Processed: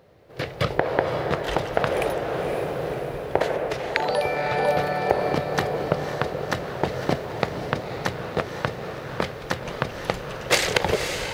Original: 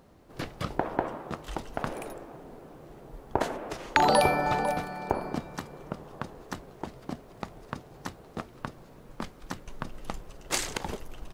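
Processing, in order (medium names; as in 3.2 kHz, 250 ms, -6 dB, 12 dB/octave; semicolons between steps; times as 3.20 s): high-pass 62 Hz; compression, threshold -29 dBFS, peak gain reduction 11.5 dB; graphic EQ 125/250/500/1000/2000/4000/8000 Hz +6/-8/+10/-3/+6/+4/-5 dB; level rider gain up to 17 dB; on a send: echo that smears into a reverb 527 ms, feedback 54%, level -7 dB; on the sum: trim -1 dB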